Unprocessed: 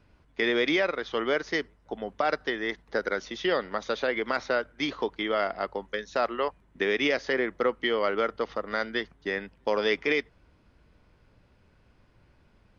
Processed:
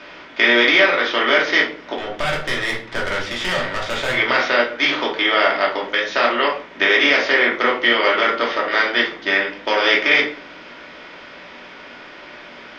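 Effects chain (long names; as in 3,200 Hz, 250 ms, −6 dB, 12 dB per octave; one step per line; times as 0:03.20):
compressor on every frequency bin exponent 0.6
low-pass filter 3,700 Hz 12 dB per octave
spectral tilt +4 dB per octave
0:01.96–0:04.14: tube saturation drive 21 dB, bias 0.65
rectangular room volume 320 cubic metres, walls furnished, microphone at 2.7 metres
level +2.5 dB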